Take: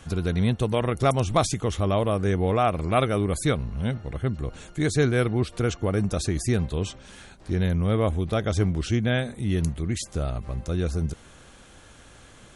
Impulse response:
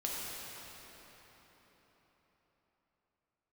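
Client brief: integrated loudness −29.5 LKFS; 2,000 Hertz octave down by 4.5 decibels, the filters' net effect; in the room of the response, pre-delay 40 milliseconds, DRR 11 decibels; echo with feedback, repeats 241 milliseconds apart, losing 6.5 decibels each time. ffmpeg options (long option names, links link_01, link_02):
-filter_complex "[0:a]equalizer=frequency=2000:width_type=o:gain=-6,aecho=1:1:241|482|723|964|1205|1446:0.473|0.222|0.105|0.0491|0.0231|0.0109,asplit=2[link_01][link_02];[1:a]atrim=start_sample=2205,adelay=40[link_03];[link_02][link_03]afir=irnorm=-1:irlink=0,volume=-15dB[link_04];[link_01][link_04]amix=inputs=2:normalize=0,volume=-5dB"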